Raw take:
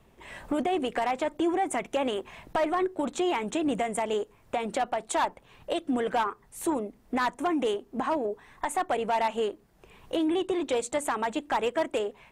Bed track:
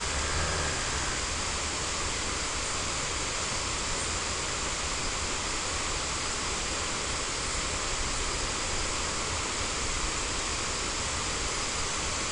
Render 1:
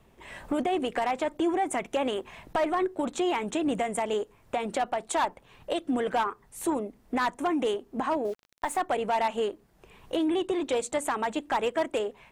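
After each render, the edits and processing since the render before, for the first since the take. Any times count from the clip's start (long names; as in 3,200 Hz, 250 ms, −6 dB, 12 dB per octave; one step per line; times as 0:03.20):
0:08.25–0:08.80: centre clipping without the shift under −44 dBFS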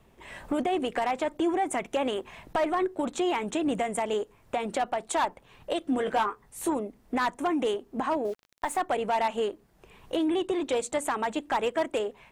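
0:05.79–0:06.69: double-tracking delay 19 ms −8 dB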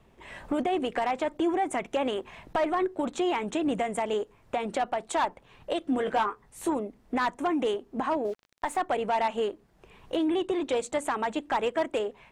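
high-shelf EQ 9,400 Hz −10 dB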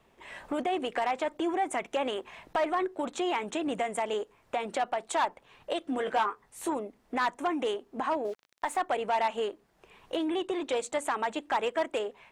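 low-shelf EQ 260 Hz −11 dB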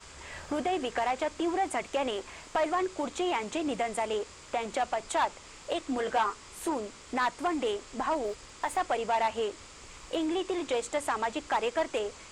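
mix in bed track −18.5 dB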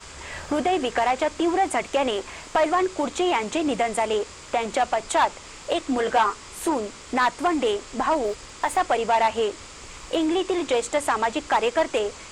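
level +7.5 dB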